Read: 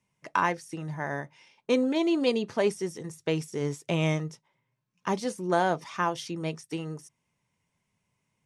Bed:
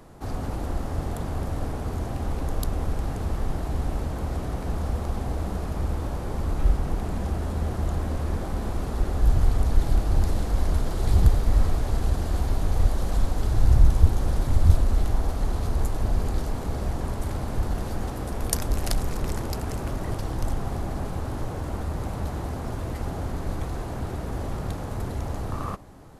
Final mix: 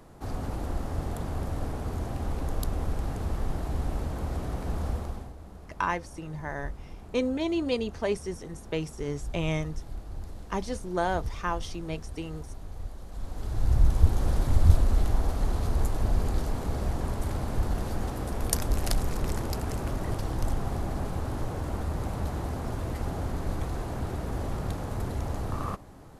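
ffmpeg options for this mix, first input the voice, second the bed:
-filter_complex "[0:a]adelay=5450,volume=-3dB[a];[1:a]volume=12.5dB,afade=t=out:st=4.9:d=0.43:silence=0.199526,afade=t=in:st=13.11:d=1.16:silence=0.16788[b];[a][b]amix=inputs=2:normalize=0"

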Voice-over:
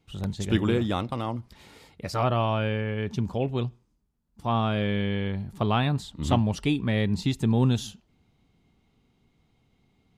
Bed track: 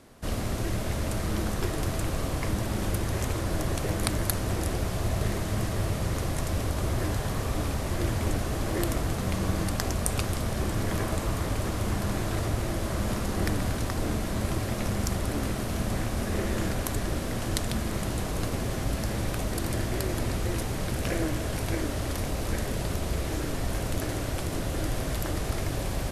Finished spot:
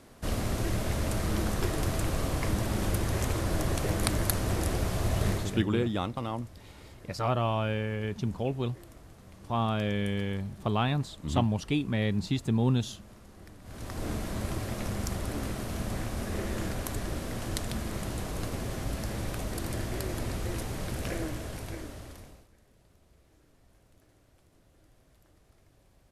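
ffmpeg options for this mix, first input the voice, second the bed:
-filter_complex "[0:a]adelay=5050,volume=-3.5dB[a];[1:a]volume=18dB,afade=t=out:st=5.29:d=0.34:silence=0.0749894,afade=t=in:st=13.63:d=0.47:silence=0.11885,afade=t=out:st=21.02:d=1.46:silence=0.0375837[b];[a][b]amix=inputs=2:normalize=0"

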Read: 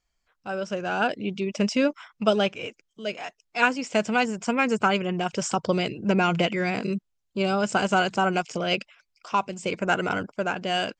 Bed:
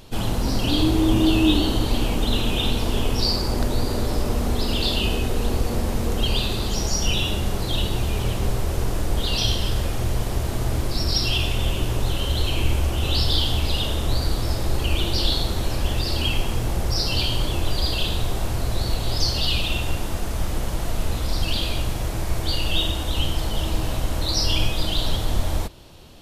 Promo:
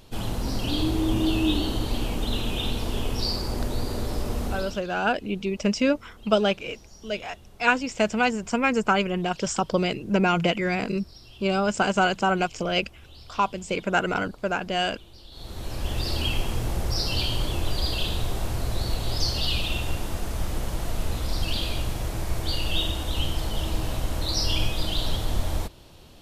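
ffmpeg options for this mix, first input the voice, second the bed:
-filter_complex "[0:a]adelay=4050,volume=0.5dB[a];[1:a]volume=17.5dB,afade=t=out:st=4.45:d=0.37:silence=0.0891251,afade=t=in:st=15.31:d=0.75:silence=0.0707946[b];[a][b]amix=inputs=2:normalize=0"

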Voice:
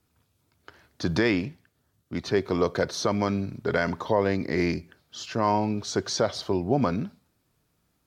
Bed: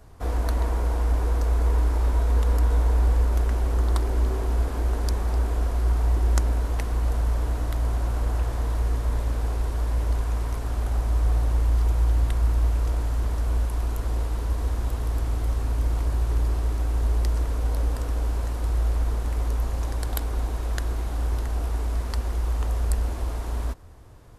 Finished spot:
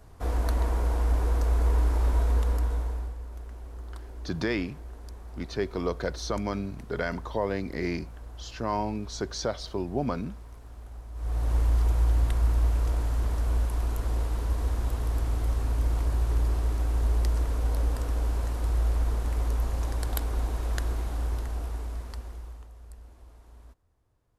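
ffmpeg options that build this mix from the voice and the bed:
-filter_complex "[0:a]adelay=3250,volume=-5.5dB[a];[1:a]volume=14dB,afade=t=out:st=2.22:d=0.93:silence=0.158489,afade=t=in:st=11.14:d=0.42:silence=0.158489,afade=t=out:st=20.87:d=1.82:silence=0.0891251[b];[a][b]amix=inputs=2:normalize=0"

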